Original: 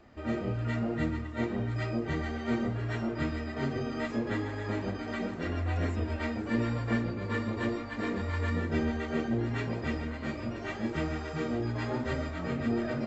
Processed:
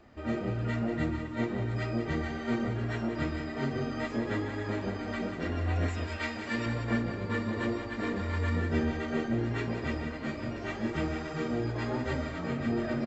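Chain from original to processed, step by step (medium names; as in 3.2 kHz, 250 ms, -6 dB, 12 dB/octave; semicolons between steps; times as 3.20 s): 5.88–6.66 s: tilt shelf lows -6.5 dB; delay 186 ms -9 dB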